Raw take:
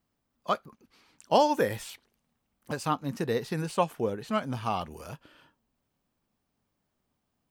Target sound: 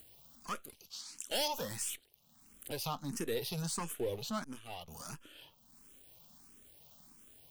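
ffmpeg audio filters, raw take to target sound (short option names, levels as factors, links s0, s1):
-filter_complex "[0:a]aeval=exprs='if(lt(val(0),0),0.447*val(0),val(0))':c=same,asettb=1/sr,asplit=3[s0][s1][s2];[s0]atrim=end=0.644[s3];[s1]atrim=start=0.64:end=1.48,asetpts=PTS-STARTPTS,afade=t=in:d=0.004:c=qsin,afade=t=out:st=0.836:d=0.004:c=qsin,equalizer=f=6700:w=0.39:g=15[s4];[s2]atrim=start=1.476[s5];[s3][s4]acrossfade=d=0.004:c1=hsin:c2=qsin[s6];[s6][s5]acrossfade=d=0.004:c1=qsin:c2=hsin,acompressor=mode=upward:threshold=0.00355:ratio=2.5,aexciter=amount=3.1:drive=4.2:freq=2800,asoftclip=type=tanh:threshold=0.075,alimiter=level_in=1.5:limit=0.0631:level=0:latency=1:release=49,volume=0.668,asettb=1/sr,asplit=3[s7][s8][s9];[s7]atrim=end=4.444[s10];[s8]atrim=start=4.44:end=4.88,asetpts=PTS-STARTPTS,afade=t=in:d=0.004:c=qsin,afade=t=out:st=0.436:d=0.004:c=qsin,agate=range=0.0224:threshold=0.0355:ratio=3:detection=peak[s11];[s9]atrim=start=4.876[s12];[s10][s11]acrossfade=d=0.004:c1=hsin:c2=qsin[s13];[s13][s12]acrossfade=d=0.004:c1=qsin:c2=hsin,asplit=2[s14][s15];[s15]afreqshift=1.5[s16];[s14][s16]amix=inputs=2:normalize=1,volume=1.12"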